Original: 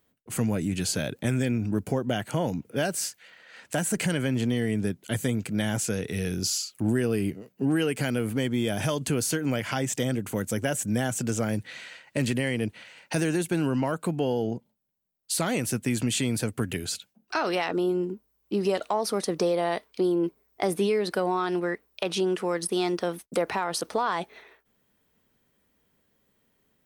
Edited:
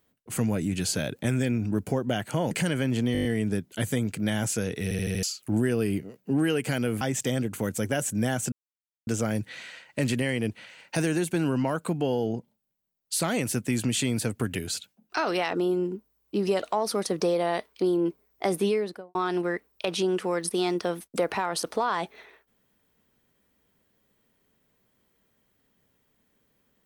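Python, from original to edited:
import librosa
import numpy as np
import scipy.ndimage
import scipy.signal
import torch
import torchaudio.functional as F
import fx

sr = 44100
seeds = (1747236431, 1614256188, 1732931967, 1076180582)

y = fx.studio_fade_out(x, sr, start_s=20.84, length_s=0.49)
y = fx.edit(y, sr, fx.cut(start_s=2.51, length_s=1.44),
    fx.stutter(start_s=4.57, slice_s=0.02, count=7),
    fx.stutter_over(start_s=6.15, slice_s=0.08, count=5),
    fx.cut(start_s=8.33, length_s=1.41),
    fx.insert_silence(at_s=11.25, length_s=0.55), tone=tone)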